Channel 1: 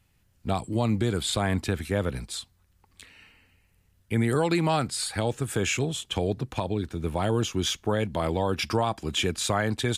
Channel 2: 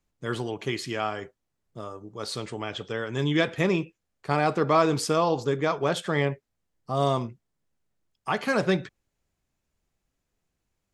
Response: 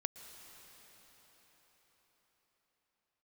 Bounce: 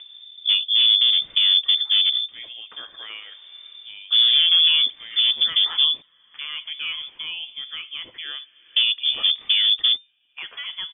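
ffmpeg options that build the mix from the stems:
-filter_complex "[0:a]lowpass=frequency=1700:poles=1,tiltshelf=frequency=1100:gain=10,volume=1dB,asplit=3[link_01][link_02][link_03];[link_01]atrim=end=6.02,asetpts=PTS-STARTPTS,afade=type=out:start_time=6.016:duration=0.004:curve=hsin[link_04];[link_02]atrim=start=6.02:end=8.76,asetpts=PTS-STARTPTS,volume=0[link_05];[link_03]atrim=start=8.76,asetpts=PTS-STARTPTS,afade=type=in:duration=0.004:curve=hsin[link_06];[link_04][link_05][link_06]concat=n=3:v=0:a=1[link_07];[1:a]adelay=2100,volume=-10dB,asplit=2[link_08][link_09];[link_09]volume=-15.5dB[link_10];[2:a]atrim=start_sample=2205[link_11];[link_10][link_11]afir=irnorm=-1:irlink=0[link_12];[link_07][link_08][link_12]amix=inputs=3:normalize=0,acompressor=mode=upward:threshold=-31dB:ratio=2.5,asoftclip=type=hard:threshold=-11dB,lowpass=frequency=3100:width_type=q:width=0.5098,lowpass=frequency=3100:width_type=q:width=0.6013,lowpass=frequency=3100:width_type=q:width=0.9,lowpass=frequency=3100:width_type=q:width=2.563,afreqshift=-3600"

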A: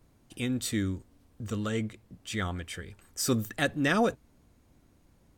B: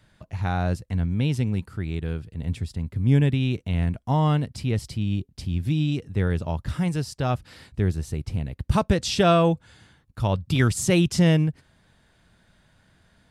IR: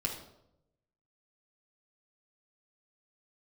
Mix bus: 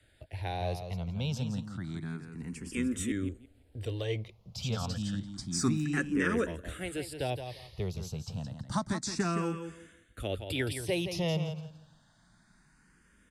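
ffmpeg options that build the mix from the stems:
-filter_complex "[0:a]adelay=2350,volume=1dB[link_01];[1:a]highshelf=frequency=8000:gain=11.5,acrossover=split=200|600|1800[link_02][link_03][link_04][link_05];[link_02]acompressor=threshold=-35dB:ratio=4[link_06];[link_03]acompressor=threshold=-26dB:ratio=4[link_07];[link_04]acompressor=threshold=-33dB:ratio=4[link_08];[link_05]acompressor=threshold=-32dB:ratio=4[link_09];[link_06][link_07][link_08][link_09]amix=inputs=4:normalize=0,volume=-2.5dB,asplit=3[link_10][link_11][link_12];[link_10]atrim=end=3.12,asetpts=PTS-STARTPTS,afade=type=out:start_time=3.116:duration=0.004:curve=hsin[link_13];[link_11]atrim=start=3.12:end=4.5,asetpts=PTS-STARTPTS,volume=0[link_14];[link_12]atrim=start=4.5,asetpts=PTS-STARTPTS,afade=type=in:duration=0.004:curve=hsin[link_15];[link_13][link_14][link_15]concat=n=3:v=0:a=1,asplit=3[link_16][link_17][link_18];[link_17]volume=-8.5dB[link_19];[link_18]apad=whole_len=340468[link_20];[link_01][link_20]sidechaincompress=threshold=-31dB:ratio=8:attack=28:release=265[link_21];[link_19]aecho=0:1:169|338|507|676:1|0.22|0.0484|0.0106[link_22];[link_21][link_16][link_22]amix=inputs=3:normalize=0,lowpass=10000,asplit=2[link_23][link_24];[link_24]afreqshift=0.29[link_25];[link_23][link_25]amix=inputs=2:normalize=1"

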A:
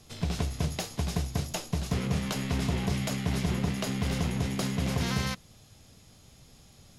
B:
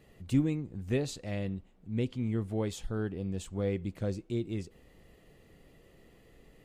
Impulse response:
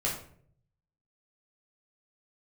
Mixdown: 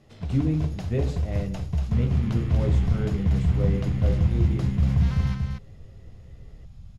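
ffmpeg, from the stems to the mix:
-filter_complex "[0:a]asubboost=boost=11:cutoff=110,volume=-4dB,asplit=2[link_01][link_02];[link_02]volume=-5dB[link_03];[1:a]volume=-3dB,asplit=2[link_04][link_05];[link_05]volume=-4.5dB[link_06];[2:a]atrim=start_sample=2205[link_07];[link_06][link_07]afir=irnorm=-1:irlink=0[link_08];[link_03]aecho=0:1:237:1[link_09];[link_01][link_04][link_08][link_09]amix=inputs=4:normalize=0,lowpass=frequency=1800:poles=1"

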